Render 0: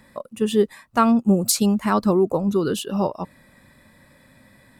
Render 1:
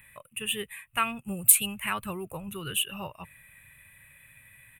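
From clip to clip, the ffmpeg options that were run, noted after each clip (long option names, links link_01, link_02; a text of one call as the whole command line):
ffmpeg -i in.wav -af "firequalizer=gain_entry='entry(130,0);entry(220,-18);entry(2600,15);entry(4800,-21);entry(9100,12)':delay=0.05:min_phase=1,volume=-4.5dB" out.wav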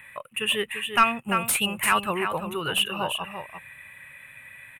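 ffmpeg -i in.wav -filter_complex "[0:a]aecho=1:1:343:0.376,asplit=2[link_01][link_02];[link_02]highpass=frequency=720:poles=1,volume=20dB,asoftclip=type=tanh:threshold=-1dB[link_03];[link_01][link_03]amix=inputs=2:normalize=0,lowpass=frequency=1500:poles=1,volume=-6dB" out.wav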